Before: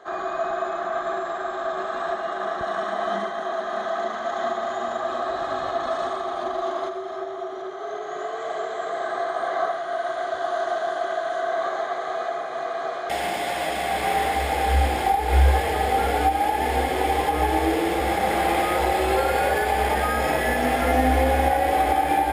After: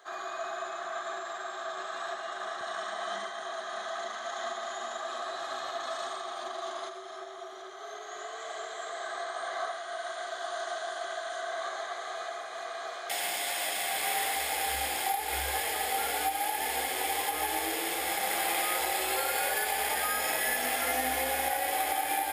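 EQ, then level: tilt +4.5 dB/oct; -9.0 dB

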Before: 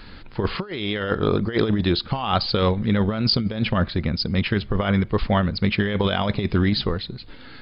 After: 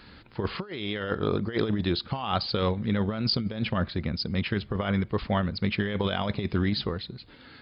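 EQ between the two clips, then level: HPF 58 Hz; -6.0 dB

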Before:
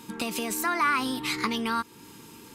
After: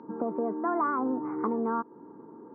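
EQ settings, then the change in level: Gaussian blur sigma 9.6 samples; HPF 360 Hz 12 dB/oct; air absorption 250 m; +9.0 dB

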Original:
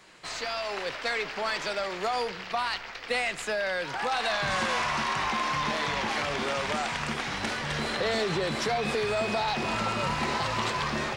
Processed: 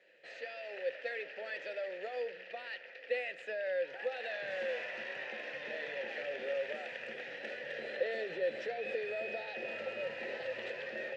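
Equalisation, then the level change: vowel filter e; high shelf 9100 Hz -8 dB; notches 50/100/150/200 Hz; +1.0 dB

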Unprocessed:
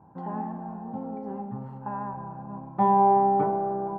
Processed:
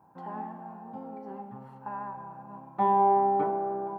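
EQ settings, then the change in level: tilt +3 dB/oct; dynamic EQ 320 Hz, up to +6 dB, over -41 dBFS, Q 1.5; -2.5 dB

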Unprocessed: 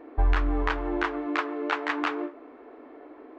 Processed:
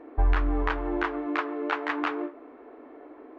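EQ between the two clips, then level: high shelf 4700 Hz -10.5 dB; 0.0 dB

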